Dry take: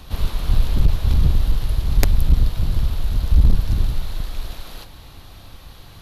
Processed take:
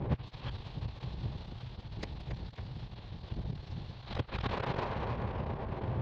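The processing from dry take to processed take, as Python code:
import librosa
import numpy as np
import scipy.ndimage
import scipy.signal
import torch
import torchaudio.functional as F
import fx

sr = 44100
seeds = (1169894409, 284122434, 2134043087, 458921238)

p1 = fx.env_lowpass(x, sr, base_hz=620.0, full_db=-12.0)
p2 = fx.dynamic_eq(p1, sr, hz=1100.0, q=4.0, threshold_db=-57.0, ratio=4.0, max_db=4)
p3 = p2 + fx.echo_banded(p2, sr, ms=277, feedback_pct=61, hz=1100.0, wet_db=-5.5, dry=0)
p4 = fx.gate_flip(p3, sr, shuts_db=-14.0, range_db=-28)
p5 = fx.leveller(p4, sr, passes=5)
p6 = fx.pitch_keep_formants(p5, sr, semitones=-5.0)
p7 = fx.cabinet(p6, sr, low_hz=100.0, low_slope=12, high_hz=4800.0, hz=(120.0, 270.0, 1300.0), db=(6, -4, -7))
y = p7 * 10.0 ** (-5.0 / 20.0)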